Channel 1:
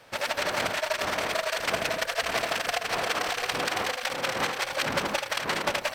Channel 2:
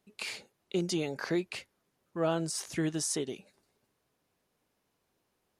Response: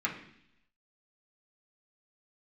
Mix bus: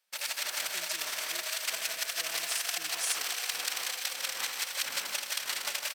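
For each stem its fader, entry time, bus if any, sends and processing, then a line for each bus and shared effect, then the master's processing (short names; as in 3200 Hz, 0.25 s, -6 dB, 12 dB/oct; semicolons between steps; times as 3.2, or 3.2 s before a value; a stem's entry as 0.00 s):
+3.0 dB, 0.00 s, no send, echo send -7 dB, dry
-0.5 dB, 0.00 s, no send, no echo send, dry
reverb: off
echo: feedback echo 0.154 s, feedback 44%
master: pre-emphasis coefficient 0.97; gate -55 dBFS, range -19 dB; low shelf 91 Hz -7 dB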